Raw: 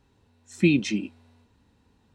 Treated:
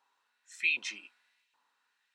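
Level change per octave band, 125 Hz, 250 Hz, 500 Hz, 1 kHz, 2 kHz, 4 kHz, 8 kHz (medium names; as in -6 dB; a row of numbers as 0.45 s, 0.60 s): under -40 dB, -37.5 dB, under -30 dB, no reading, +0.5 dB, -3.5 dB, -6.0 dB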